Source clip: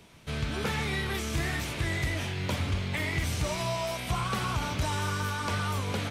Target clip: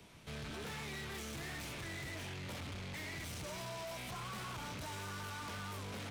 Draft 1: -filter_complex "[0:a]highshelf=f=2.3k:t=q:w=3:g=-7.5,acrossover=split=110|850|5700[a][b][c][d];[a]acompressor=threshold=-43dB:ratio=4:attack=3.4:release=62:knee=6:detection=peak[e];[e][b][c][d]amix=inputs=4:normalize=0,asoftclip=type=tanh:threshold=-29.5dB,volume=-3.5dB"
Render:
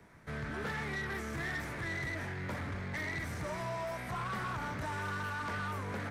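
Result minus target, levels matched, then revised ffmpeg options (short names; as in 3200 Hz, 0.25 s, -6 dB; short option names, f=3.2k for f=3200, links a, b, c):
4000 Hz band -8.5 dB; soft clip: distortion -6 dB
-filter_complex "[0:a]acrossover=split=110|850|5700[a][b][c][d];[a]acompressor=threshold=-43dB:ratio=4:attack=3.4:release=62:knee=6:detection=peak[e];[e][b][c][d]amix=inputs=4:normalize=0,asoftclip=type=tanh:threshold=-39dB,volume=-3.5dB"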